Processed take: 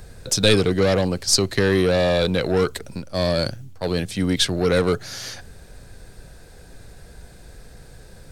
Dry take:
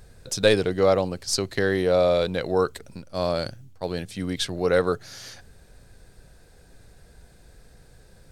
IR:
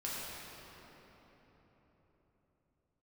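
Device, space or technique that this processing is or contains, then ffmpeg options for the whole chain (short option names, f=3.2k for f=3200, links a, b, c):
one-band saturation: -filter_complex "[0:a]acrossover=split=300|2200[a][b][c];[b]asoftclip=type=tanh:threshold=-28dB[d];[a][d][c]amix=inputs=3:normalize=0,volume=8dB"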